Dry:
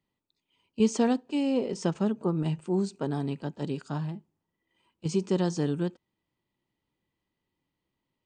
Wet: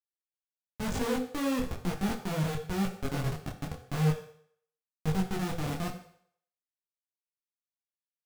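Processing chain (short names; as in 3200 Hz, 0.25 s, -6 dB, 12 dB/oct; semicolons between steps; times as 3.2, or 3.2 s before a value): low-pass opened by the level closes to 670 Hz, open at -24 dBFS; graphic EQ 125/2000/8000 Hz +12/-11/+10 dB; Schmitt trigger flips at -22.5 dBFS; on a send at -4 dB: reverb RT60 0.65 s, pre-delay 3 ms; on the sum: detuned doubles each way 34 cents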